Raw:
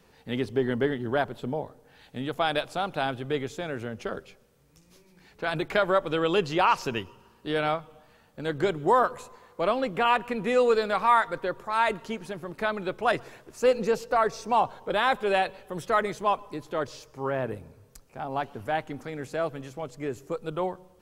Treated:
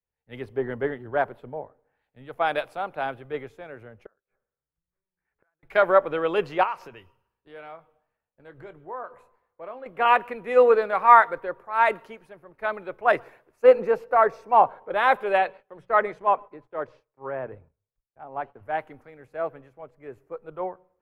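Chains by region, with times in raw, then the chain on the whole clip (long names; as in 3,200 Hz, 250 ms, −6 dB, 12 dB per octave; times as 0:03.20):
0:04.06–0:05.63: gate with flip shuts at −31 dBFS, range −31 dB + low-pass with resonance 1,600 Hz, resonance Q 2.4
0:06.63–0:09.86: downward compressor 2.5 to 1, threshold −32 dBFS + double-tracking delay 24 ms −13 dB
0:15.37–0:18.63: high-frequency loss of the air 61 metres + noise gate −48 dBFS, range −15 dB + mains-hum notches 60/120/180 Hz
whole clip: drawn EQ curve 220 Hz 0 dB, 530 Hz +9 dB, 2,200 Hz +7 dB, 3,400 Hz −4 dB, 7,300 Hz −10 dB, 11,000 Hz −1 dB; multiband upward and downward expander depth 100%; level −7.5 dB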